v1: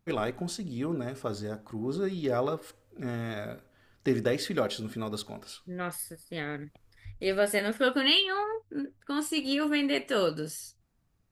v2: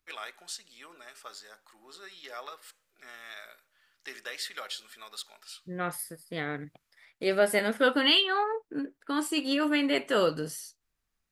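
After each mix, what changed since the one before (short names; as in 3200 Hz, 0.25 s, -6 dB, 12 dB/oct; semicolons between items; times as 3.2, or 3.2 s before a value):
first voice: add HPF 1500 Hz 12 dB/oct; second voice: add bell 980 Hz +4 dB 1.7 oct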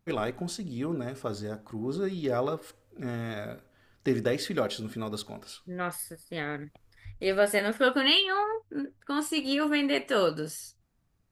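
first voice: remove HPF 1500 Hz 12 dB/oct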